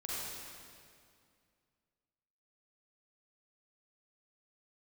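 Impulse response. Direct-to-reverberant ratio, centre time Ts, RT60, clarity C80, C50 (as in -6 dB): -7.5 dB, 0.167 s, 2.3 s, -3.0 dB, -5.5 dB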